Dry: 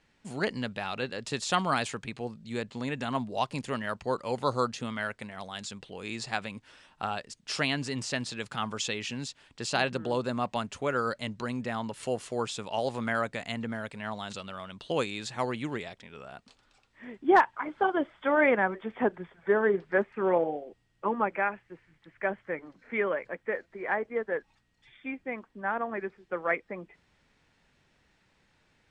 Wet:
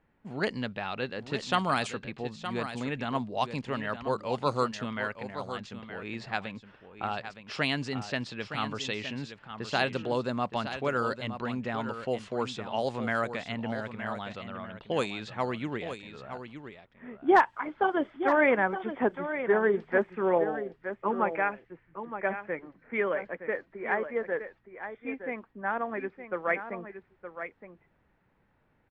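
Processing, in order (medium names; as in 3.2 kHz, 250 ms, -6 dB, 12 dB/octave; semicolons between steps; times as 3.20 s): level-controlled noise filter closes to 1.4 kHz, open at -22.5 dBFS; on a send: delay 917 ms -10 dB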